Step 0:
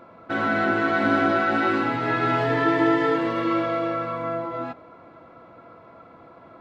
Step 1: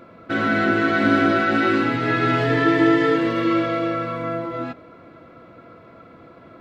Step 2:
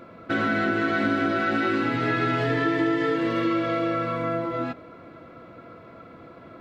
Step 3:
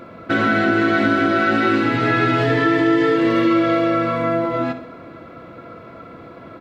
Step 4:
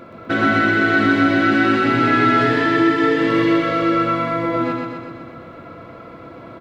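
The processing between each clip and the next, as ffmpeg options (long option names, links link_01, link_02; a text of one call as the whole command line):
ffmpeg -i in.wav -af "equalizer=frequency=880:width=1.5:gain=-10,volume=5.5dB" out.wav
ffmpeg -i in.wav -af "acompressor=threshold=-21dB:ratio=4" out.wav
ffmpeg -i in.wav -af "aecho=1:1:63|126|189|252|315|378:0.224|0.121|0.0653|0.0353|0.019|0.0103,volume=6.5dB" out.wav
ffmpeg -i in.wav -af "aecho=1:1:125|250|375|500|625|750|875|1000|1125:0.708|0.425|0.255|0.153|0.0917|0.055|0.033|0.0198|0.0119,volume=-1dB" out.wav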